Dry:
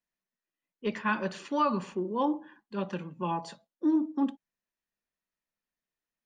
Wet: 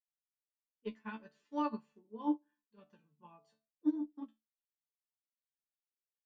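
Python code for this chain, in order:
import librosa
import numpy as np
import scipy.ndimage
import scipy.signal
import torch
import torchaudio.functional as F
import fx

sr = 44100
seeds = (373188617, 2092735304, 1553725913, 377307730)

y = fx.low_shelf(x, sr, hz=360.0, db=3.0)
y = fx.resonator_bank(y, sr, root=50, chord='fifth', decay_s=0.21)
y = fx.upward_expand(y, sr, threshold_db=-48.0, expansion=2.5)
y = y * 10.0 ** (6.0 / 20.0)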